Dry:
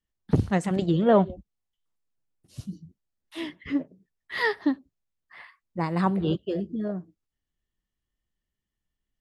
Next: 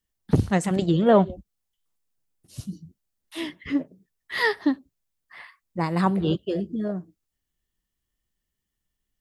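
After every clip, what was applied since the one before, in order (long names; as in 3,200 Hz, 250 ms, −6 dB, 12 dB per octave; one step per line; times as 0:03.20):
high-shelf EQ 5,800 Hz +8 dB
level +2 dB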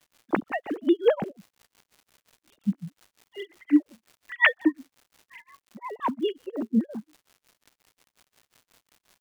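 three sine waves on the formant tracks
surface crackle 290 per second −42 dBFS
amplitude tremolo 5.6 Hz, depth 99%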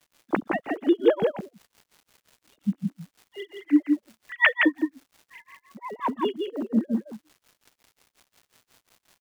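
single-tap delay 167 ms −4 dB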